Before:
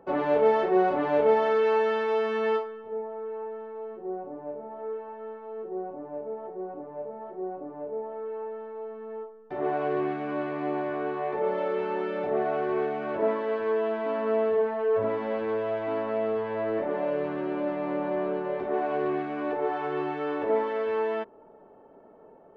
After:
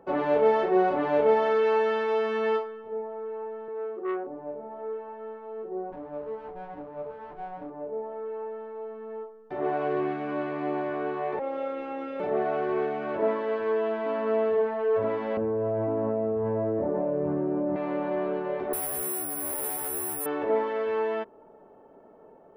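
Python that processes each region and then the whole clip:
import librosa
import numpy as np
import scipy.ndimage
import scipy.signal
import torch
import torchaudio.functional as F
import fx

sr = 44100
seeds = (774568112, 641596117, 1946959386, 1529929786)

y = fx.chain(x, sr, fx.highpass_res(hz=320.0, q=2.5),
    fx.transformer_sat(knee_hz=810.0), at=(3.68, 4.27))
y = fx.chain(y, sr, fx.lower_of_two(delay_ms=6.7),
    fx.lowpass(hz=2600.0, slope=12), at=(5.92, 7.7))
y = fx.chain(y, sr, fx.notch_comb(f0_hz=210.0),
    fx.robotise(hz=271.0), at=(11.39, 12.2))
y = fx.chain(y, sr, fx.bessel_lowpass(hz=610.0, order=2),
    fx.peak_eq(hz=77.0, db=11.0, octaves=1.8),
    fx.env_flatten(amount_pct=100), at=(15.37, 17.76))
y = fx.chain(y, sr, fx.high_shelf(hz=2400.0, db=-10.0),
    fx.tube_stage(drive_db=35.0, bias=0.8),
    fx.resample_bad(factor=4, down='none', up='zero_stuff'), at=(18.73, 20.26))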